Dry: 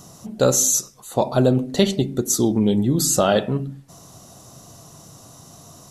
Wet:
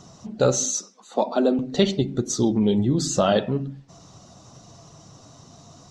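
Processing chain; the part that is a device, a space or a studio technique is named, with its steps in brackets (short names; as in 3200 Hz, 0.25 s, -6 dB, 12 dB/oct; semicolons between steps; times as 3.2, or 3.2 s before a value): 0.65–1.59 Chebyshev high-pass 190 Hz, order 6; clip after many re-uploads (LPF 6200 Hz 24 dB/oct; bin magnitudes rounded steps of 15 dB); gain -1.5 dB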